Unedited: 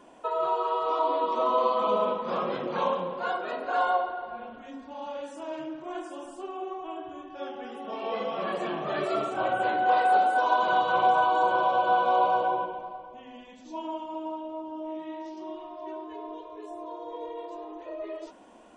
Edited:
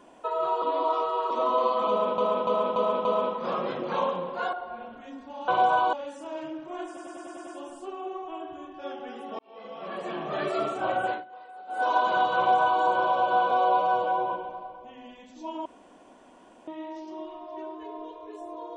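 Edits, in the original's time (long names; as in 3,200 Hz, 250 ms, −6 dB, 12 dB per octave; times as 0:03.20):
0:00.62–0:01.30: reverse
0:01.89–0:02.18: repeat, 5 plays
0:03.37–0:04.14: remove
0:06.03: stutter 0.10 s, 7 plays
0:07.95–0:08.92: fade in
0:09.61–0:10.43: duck −23.5 dB, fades 0.20 s
0:10.93–0:11.38: duplicate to 0:05.09
0:12.07–0:12.60: time-stretch 1.5×
0:13.95–0:14.97: fill with room tone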